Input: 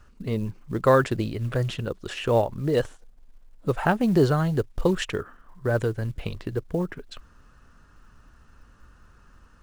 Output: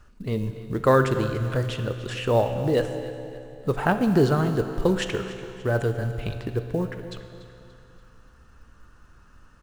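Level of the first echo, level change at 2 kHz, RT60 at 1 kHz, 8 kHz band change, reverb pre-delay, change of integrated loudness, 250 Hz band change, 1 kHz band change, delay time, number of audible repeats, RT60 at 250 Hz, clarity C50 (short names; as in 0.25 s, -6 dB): -16.0 dB, +1.0 dB, 2.6 s, +0.5 dB, 16 ms, +0.5 dB, +0.5 dB, +0.5 dB, 0.289 s, 3, 2.7 s, 8.0 dB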